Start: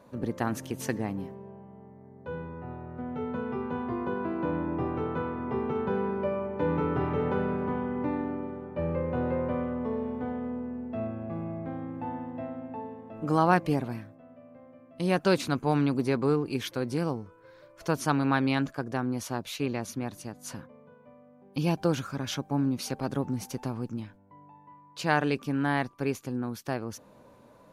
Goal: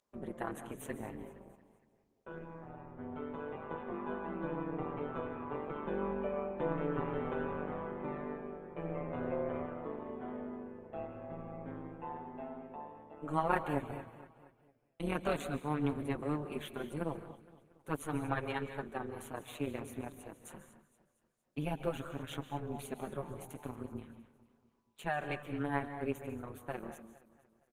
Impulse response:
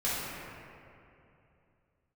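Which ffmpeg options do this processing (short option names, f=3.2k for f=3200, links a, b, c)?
-filter_complex "[0:a]agate=range=-23dB:threshold=-45dB:ratio=16:detection=peak,highpass=f=220:p=1,tremolo=f=150:d=0.889,asplit=2[a][b];[b]aeval=exprs='clip(val(0),-1,0.0398)':c=same,volume=-11.5dB[c];[a][c]amix=inputs=2:normalize=0,flanger=delay=4.6:depth=3.2:regen=-5:speed=0.48:shape=triangular,aeval=exprs='val(0)+0.002*sin(2*PI*5200*n/s)':c=same,asuperstop=centerf=5100:order=4:qfactor=1.5,aecho=1:1:232|464|696|928:0.158|0.0777|0.0381|0.0186,asplit=2[d][e];[1:a]atrim=start_sample=2205,atrim=end_sample=3969,adelay=138[f];[e][f]afir=irnorm=-1:irlink=0,volume=-16dB[g];[d][g]amix=inputs=2:normalize=0,volume=-2dB" -ar 48000 -c:a libopus -b:a 20k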